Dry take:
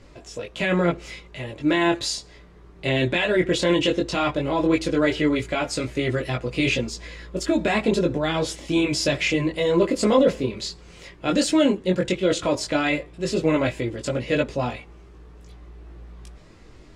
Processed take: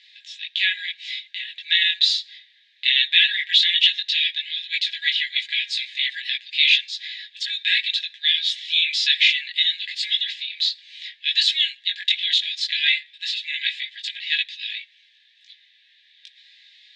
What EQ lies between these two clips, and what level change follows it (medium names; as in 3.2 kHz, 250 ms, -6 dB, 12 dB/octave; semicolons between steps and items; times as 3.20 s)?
brick-wall FIR high-pass 1.6 kHz; resonant low-pass 3.7 kHz, resonance Q 7; +1.5 dB